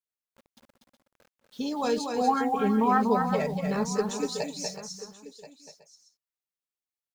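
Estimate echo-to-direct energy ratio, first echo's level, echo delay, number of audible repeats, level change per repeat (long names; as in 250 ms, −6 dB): −3.5 dB, −5.0 dB, 242 ms, 5, repeats not evenly spaced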